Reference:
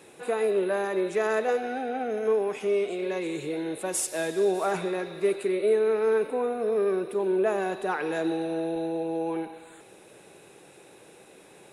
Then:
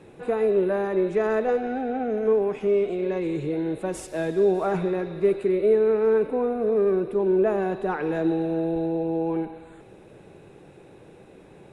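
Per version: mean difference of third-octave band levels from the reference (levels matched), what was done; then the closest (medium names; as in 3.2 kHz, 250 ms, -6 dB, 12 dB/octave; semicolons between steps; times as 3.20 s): 5.0 dB: RIAA curve playback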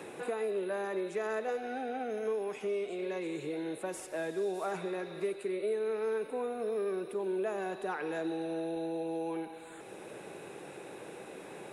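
3.5 dB: three bands compressed up and down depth 70%; trim -8.5 dB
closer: second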